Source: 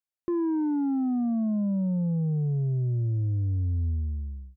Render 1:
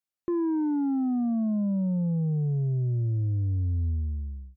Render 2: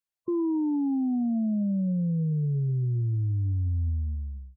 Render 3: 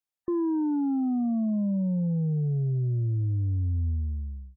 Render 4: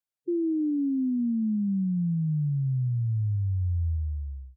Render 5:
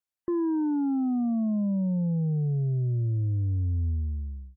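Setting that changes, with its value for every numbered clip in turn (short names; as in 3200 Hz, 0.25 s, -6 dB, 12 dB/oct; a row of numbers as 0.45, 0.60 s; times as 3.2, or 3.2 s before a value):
spectral gate, under each frame's peak: -60, -20, -35, -10, -45 dB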